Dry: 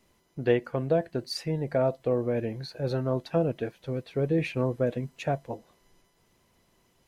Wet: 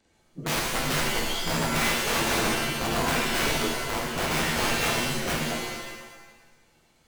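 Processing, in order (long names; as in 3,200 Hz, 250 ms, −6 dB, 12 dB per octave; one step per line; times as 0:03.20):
partials spread apart or drawn together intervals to 88%
wrap-around overflow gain 25 dB
reverb with rising layers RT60 1.1 s, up +7 semitones, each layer −2 dB, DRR −2 dB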